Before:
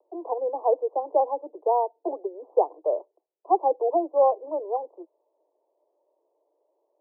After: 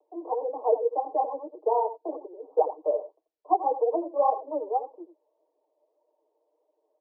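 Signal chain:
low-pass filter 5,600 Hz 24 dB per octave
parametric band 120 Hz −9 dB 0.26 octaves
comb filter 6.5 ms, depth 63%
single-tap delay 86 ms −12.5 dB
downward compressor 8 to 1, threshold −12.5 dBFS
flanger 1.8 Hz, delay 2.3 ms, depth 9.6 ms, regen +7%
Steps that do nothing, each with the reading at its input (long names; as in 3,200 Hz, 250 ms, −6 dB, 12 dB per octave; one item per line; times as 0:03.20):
low-pass filter 5,600 Hz: nothing at its input above 1,100 Hz
parametric band 120 Hz: nothing at its input below 270 Hz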